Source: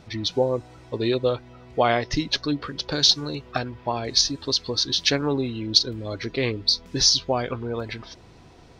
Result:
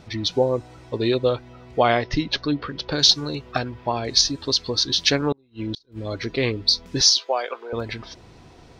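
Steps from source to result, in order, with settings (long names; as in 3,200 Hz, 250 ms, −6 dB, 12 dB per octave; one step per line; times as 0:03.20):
0:02.02–0:02.99: low-pass filter 4,100 Hz 12 dB per octave
0:05.32–0:06.04: gate with flip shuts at −20 dBFS, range −36 dB
0:07.01–0:07.73: high-pass filter 470 Hz 24 dB per octave
level +2 dB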